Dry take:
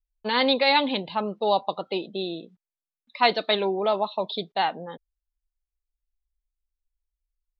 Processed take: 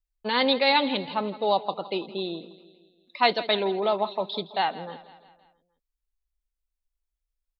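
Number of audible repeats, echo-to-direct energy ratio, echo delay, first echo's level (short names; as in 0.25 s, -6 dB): 4, -15.5 dB, 0.165 s, -17.0 dB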